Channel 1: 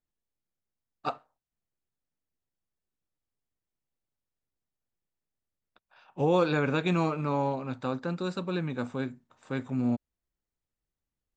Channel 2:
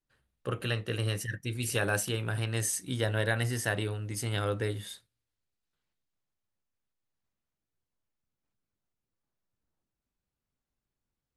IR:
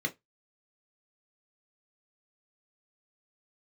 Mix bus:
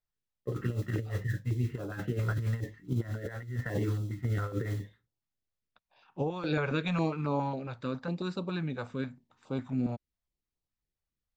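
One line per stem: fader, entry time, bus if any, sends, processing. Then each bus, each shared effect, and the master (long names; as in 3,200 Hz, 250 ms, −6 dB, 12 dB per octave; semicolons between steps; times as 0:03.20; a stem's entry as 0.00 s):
−3.5 dB, 0.00 s, no send, high-shelf EQ 3,800 Hz −10.5 dB
0.0 dB, 0.00 s, send −3.5 dB, low-pass filter 1,900 Hz 24 dB per octave; noise that follows the level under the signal 20 dB; multiband upward and downward expander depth 100%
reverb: on, RT60 0.15 s, pre-delay 3 ms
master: parametric band 4,700 Hz +5.5 dB 1.1 octaves; compressor whose output falls as the input rises −29 dBFS, ratio −0.5; notch on a step sequencer 7.3 Hz 270–1,800 Hz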